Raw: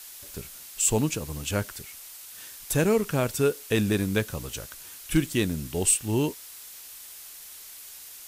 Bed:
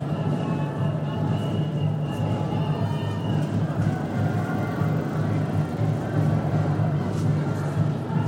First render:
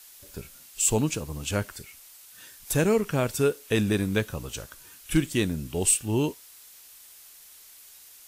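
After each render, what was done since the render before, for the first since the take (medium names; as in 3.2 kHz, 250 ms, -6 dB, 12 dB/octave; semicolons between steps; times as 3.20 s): noise print and reduce 6 dB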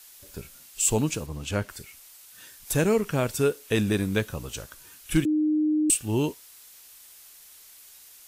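1.26–1.69 s: treble shelf 6.7 kHz -9.5 dB; 5.25–5.90 s: bleep 306 Hz -20 dBFS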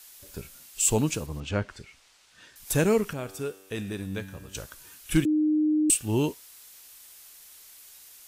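1.40–2.56 s: distance through air 110 m; 3.13–4.55 s: feedback comb 96 Hz, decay 1.5 s, mix 70%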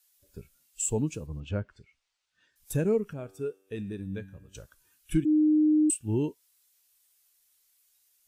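compression 2:1, threshold -27 dBFS, peak gain reduction 6.5 dB; spectral contrast expander 1.5:1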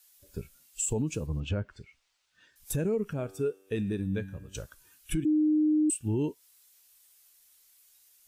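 in parallel at +1 dB: compression, threshold -35 dBFS, peak gain reduction 14.5 dB; on the sum: peak limiter -21 dBFS, peak gain reduction 9 dB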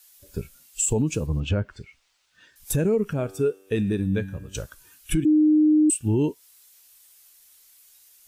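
trim +7 dB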